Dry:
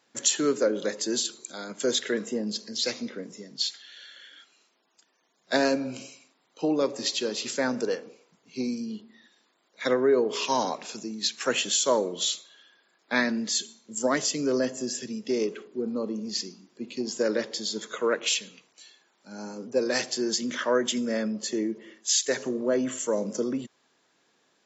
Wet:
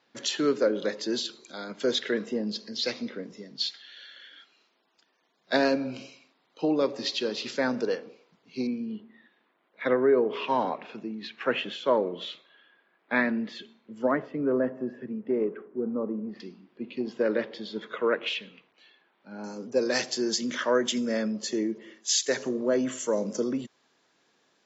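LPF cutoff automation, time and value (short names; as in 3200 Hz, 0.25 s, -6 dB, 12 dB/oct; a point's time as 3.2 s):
LPF 24 dB/oct
4900 Hz
from 8.67 s 2800 Hz
from 14.11 s 1700 Hz
from 16.4 s 3200 Hz
from 19.44 s 7000 Hz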